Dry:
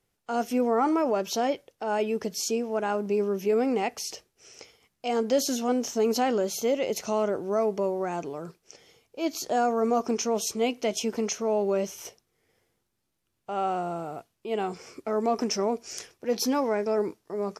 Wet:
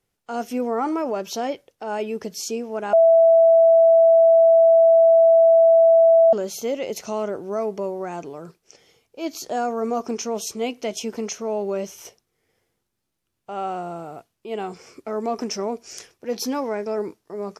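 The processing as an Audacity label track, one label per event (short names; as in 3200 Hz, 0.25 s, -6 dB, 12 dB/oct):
2.930000	6.330000	bleep 660 Hz -10 dBFS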